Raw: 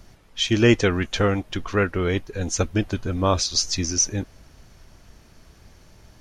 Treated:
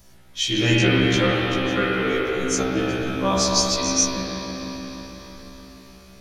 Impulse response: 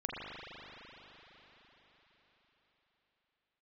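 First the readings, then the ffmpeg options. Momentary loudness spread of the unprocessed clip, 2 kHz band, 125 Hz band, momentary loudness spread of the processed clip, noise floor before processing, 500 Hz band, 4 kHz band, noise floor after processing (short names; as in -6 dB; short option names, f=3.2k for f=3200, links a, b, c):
10 LU, +4.0 dB, -0.5 dB, 16 LU, -52 dBFS, +1.0 dB, +3.5 dB, -47 dBFS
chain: -filter_complex "[0:a]aemphasis=mode=production:type=50kf[a];[1:a]atrim=start_sample=2205[b];[a][b]afir=irnorm=-1:irlink=0,afftfilt=real='re*1.73*eq(mod(b,3),0)':imag='im*1.73*eq(mod(b,3),0)':win_size=2048:overlap=0.75"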